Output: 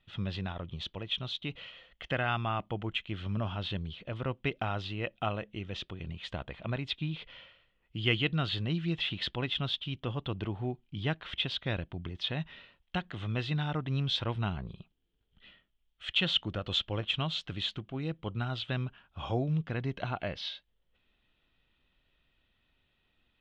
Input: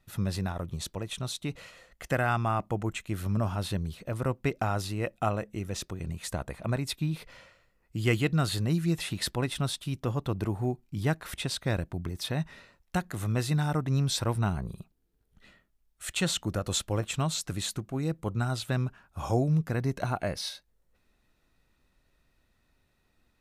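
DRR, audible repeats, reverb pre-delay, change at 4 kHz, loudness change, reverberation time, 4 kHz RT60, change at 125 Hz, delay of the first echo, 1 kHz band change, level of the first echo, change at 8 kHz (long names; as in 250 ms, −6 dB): no reverb audible, no echo audible, no reverb audible, +3.5 dB, −3.0 dB, no reverb audible, no reverb audible, −5.0 dB, no echo audible, −4.5 dB, no echo audible, below −20 dB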